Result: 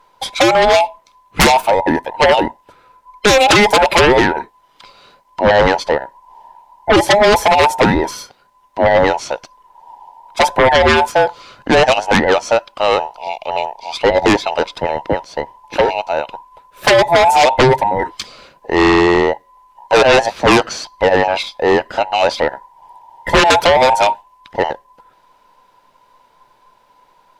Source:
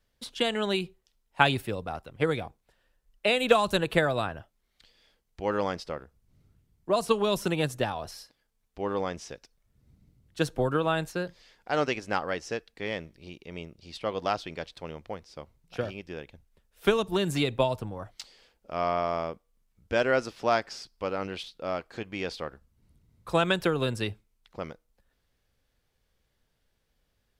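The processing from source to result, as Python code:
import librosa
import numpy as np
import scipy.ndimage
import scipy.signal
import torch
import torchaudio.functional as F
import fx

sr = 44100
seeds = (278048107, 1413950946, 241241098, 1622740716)

y = fx.band_invert(x, sr, width_hz=1000)
y = fx.high_shelf(y, sr, hz=3700.0, db=-10.0)
y = fx.fold_sine(y, sr, drive_db=18, ceiling_db=-5.5)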